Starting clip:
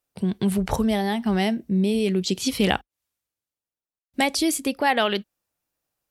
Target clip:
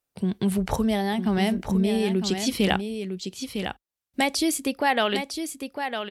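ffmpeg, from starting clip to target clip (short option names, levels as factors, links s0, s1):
-af "aecho=1:1:955:0.422,volume=0.841"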